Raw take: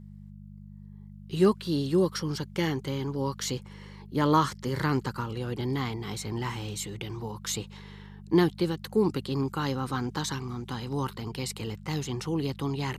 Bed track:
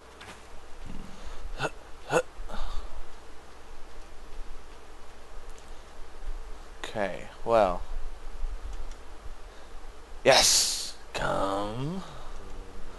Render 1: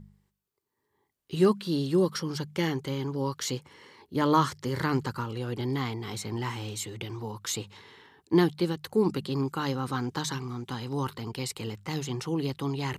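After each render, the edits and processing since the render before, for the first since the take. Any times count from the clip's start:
hum removal 50 Hz, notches 4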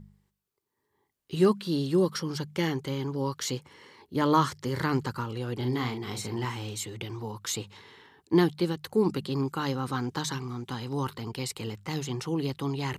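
0:05.58–0:06.45: double-tracking delay 40 ms −6.5 dB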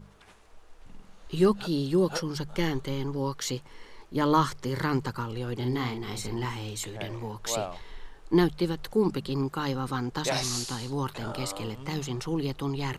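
mix in bed track −10.5 dB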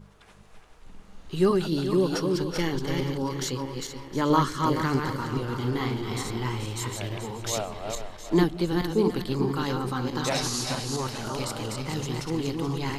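feedback delay that plays each chunk backwards 215 ms, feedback 45%, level −3.5 dB
echo with a time of its own for lows and highs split 330 Hz, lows 181 ms, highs 714 ms, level −15.5 dB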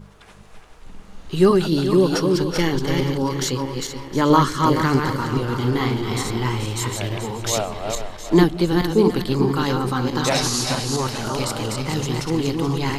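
level +7 dB
brickwall limiter −2 dBFS, peak gain reduction 1.5 dB

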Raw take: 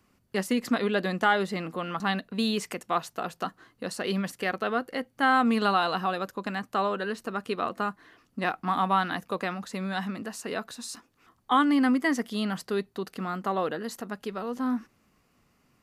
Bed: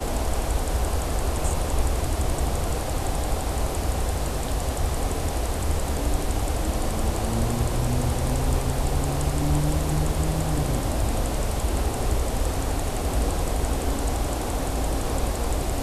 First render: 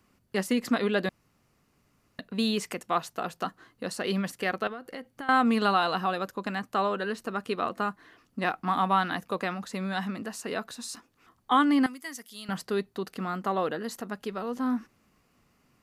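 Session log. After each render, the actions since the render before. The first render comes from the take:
0:01.09–0:02.19: fill with room tone
0:04.67–0:05.29: downward compressor 16 to 1, threshold −34 dBFS
0:11.86–0:12.49: first-order pre-emphasis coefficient 0.9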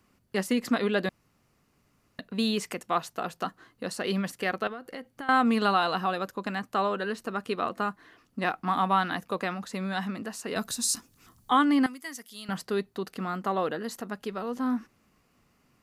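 0:10.56–0:11.51: bass and treble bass +11 dB, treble +14 dB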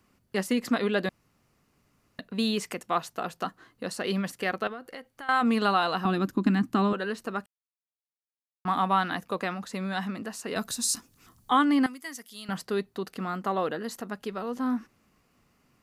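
0:04.85–0:05.41: parametric band 190 Hz −4.5 dB → −14 dB 2.2 octaves
0:06.05–0:06.93: low shelf with overshoot 390 Hz +9 dB, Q 3
0:07.46–0:08.65: silence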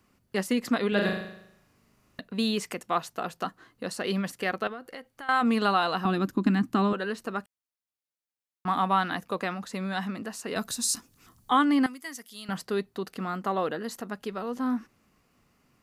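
0:00.88–0:02.20: flutter between parallel walls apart 6.7 metres, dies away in 0.76 s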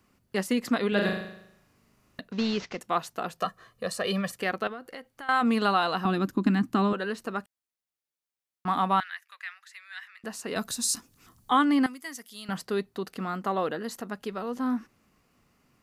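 0:02.32–0:02.80: variable-slope delta modulation 32 kbit/s
0:03.38–0:04.37: comb filter 1.7 ms, depth 78%
0:09.00–0:10.24: four-pole ladder high-pass 1,600 Hz, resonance 55%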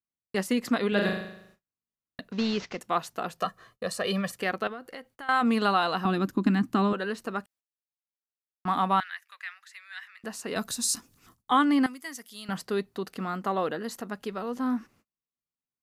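noise gate −57 dBFS, range −37 dB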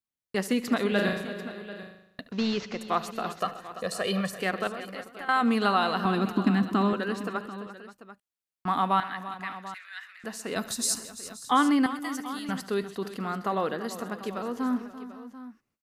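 multi-tap delay 72/130/340/527/740 ms −18.5/−18.5/−14/−17.5/−15.5 dB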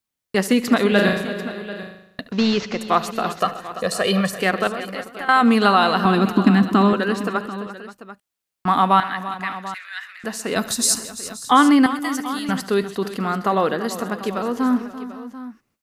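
level +9 dB
brickwall limiter −3 dBFS, peak gain reduction 1 dB

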